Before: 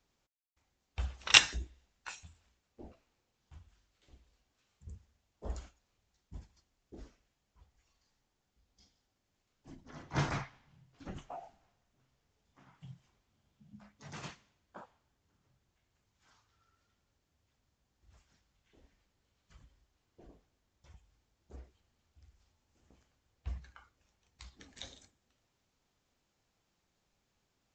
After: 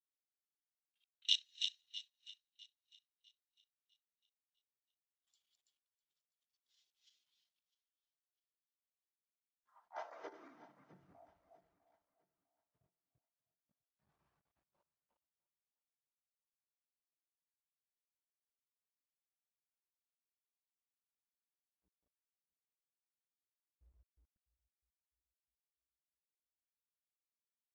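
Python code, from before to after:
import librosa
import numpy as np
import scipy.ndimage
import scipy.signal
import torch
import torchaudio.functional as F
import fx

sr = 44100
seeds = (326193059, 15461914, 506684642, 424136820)

p1 = fx.reverse_delay_fb(x, sr, ms=172, feedback_pct=60, wet_db=-0.5)
p2 = fx.doppler_pass(p1, sr, speed_mps=14, closest_m=3.5, pass_at_s=7.25)
p3 = fx.env_lowpass(p2, sr, base_hz=1100.0, full_db=-53.0)
p4 = fx.peak_eq(p3, sr, hz=130.0, db=-9.5, octaves=1.7)
p5 = fx.level_steps(p4, sr, step_db=14)
p6 = p4 + F.gain(torch.from_numpy(p5), 2.0).numpy()
p7 = fx.filter_sweep_highpass(p6, sr, from_hz=3400.0, to_hz=61.0, start_s=9.0, end_s=11.47, q=2.7)
p8 = fx.echo_banded(p7, sr, ms=176, feedback_pct=83, hz=440.0, wet_db=-19)
p9 = fx.quant_dither(p8, sr, seeds[0], bits=12, dither='none')
p10 = p9 + fx.echo_feedback(p9, sr, ms=652, feedback_pct=48, wet_db=-13, dry=0)
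p11 = fx.spectral_expand(p10, sr, expansion=1.5)
y = F.gain(torch.from_numpy(p11), 5.5).numpy()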